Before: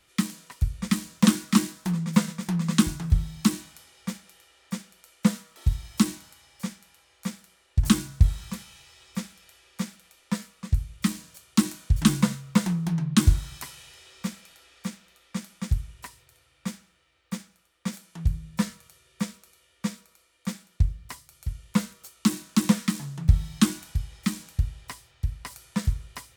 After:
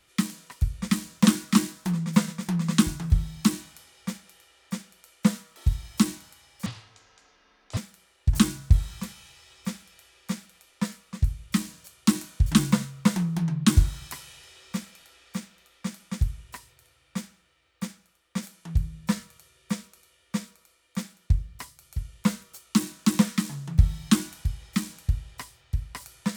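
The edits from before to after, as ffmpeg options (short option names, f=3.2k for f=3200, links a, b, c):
-filter_complex "[0:a]asplit=3[a][b][c];[a]atrim=end=6.664[d];[b]atrim=start=6.66:end=7.27,asetpts=PTS-STARTPTS,asetrate=24255,aresample=44100[e];[c]atrim=start=7.266[f];[d][e]acrossfade=d=0.004:c1=hsin:c2=hsin[g];[g][f]acrossfade=d=0.004:c1=hsin:c2=hsin"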